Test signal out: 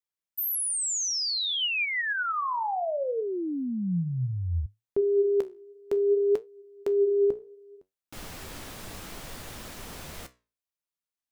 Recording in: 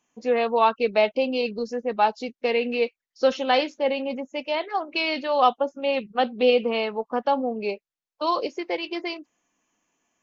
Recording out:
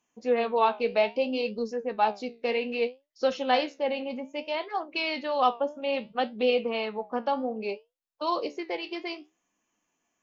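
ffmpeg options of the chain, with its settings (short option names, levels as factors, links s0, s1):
-af "flanger=delay=8.4:depth=9.4:regen=70:speed=0.62:shape=triangular"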